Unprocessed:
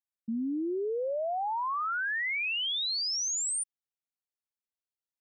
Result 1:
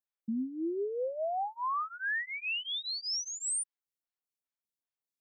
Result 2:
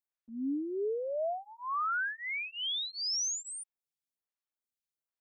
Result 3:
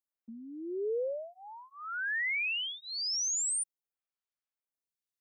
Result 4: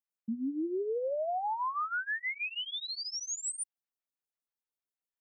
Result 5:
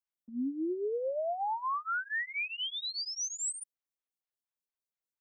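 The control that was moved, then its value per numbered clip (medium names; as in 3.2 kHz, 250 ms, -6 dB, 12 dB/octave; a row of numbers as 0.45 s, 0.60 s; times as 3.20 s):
lamp-driven phase shifter, rate: 2.5 Hz, 1.2 Hz, 0.53 Hz, 6.3 Hz, 4.3 Hz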